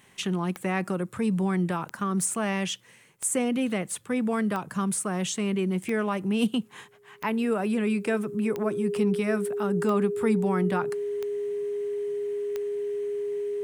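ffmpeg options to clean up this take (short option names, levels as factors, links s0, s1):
-af "adeclick=t=4,bandreject=f=410:w=30"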